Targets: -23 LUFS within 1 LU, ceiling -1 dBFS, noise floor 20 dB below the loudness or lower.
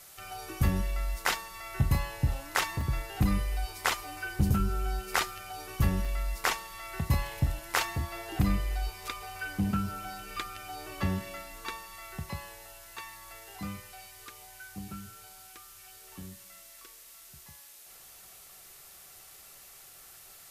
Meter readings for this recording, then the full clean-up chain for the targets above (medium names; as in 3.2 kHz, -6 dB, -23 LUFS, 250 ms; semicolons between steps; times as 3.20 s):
dropouts 2; longest dropout 2.5 ms; noise floor -52 dBFS; noise floor target -53 dBFS; loudness -33.0 LUFS; peak level -15.0 dBFS; loudness target -23.0 LUFS
-> interpolate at 2.81/6.05 s, 2.5 ms; noise reduction 6 dB, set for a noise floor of -52 dBFS; trim +10 dB